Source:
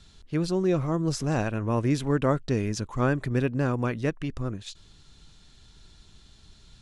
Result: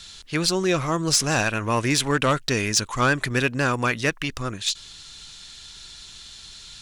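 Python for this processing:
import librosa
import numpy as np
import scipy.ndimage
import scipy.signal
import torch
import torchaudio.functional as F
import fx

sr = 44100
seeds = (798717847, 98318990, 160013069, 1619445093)

y = fx.tilt_shelf(x, sr, db=-9.5, hz=970.0)
y = fx.fold_sine(y, sr, drive_db=5, ceiling_db=-12.5)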